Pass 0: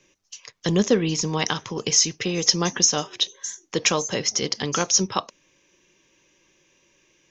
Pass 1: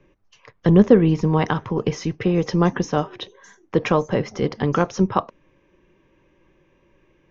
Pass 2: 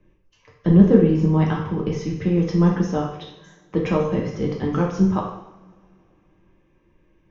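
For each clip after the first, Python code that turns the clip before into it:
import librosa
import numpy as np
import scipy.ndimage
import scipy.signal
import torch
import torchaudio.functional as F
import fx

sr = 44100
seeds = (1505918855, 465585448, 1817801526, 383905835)

y1 = scipy.signal.sosfilt(scipy.signal.butter(2, 1400.0, 'lowpass', fs=sr, output='sos'), x)
y1 = fx.low_shelf(y1, sr, hz=92.0, db=12.0)
y1 = y1 * 10.0 ** (5.5 / 20.0)
y2 = fx.low_shelf(y1, sr, hz=370.0, db=8.0)
y2 = fx.rev_double_slope(y2, sr, seeds[0], early_s=0.75, late_s=3.0, knee_db=-25, drr_db=-2.0)
y2 = y2 * 10.0 ** (-10.0 / 20.0)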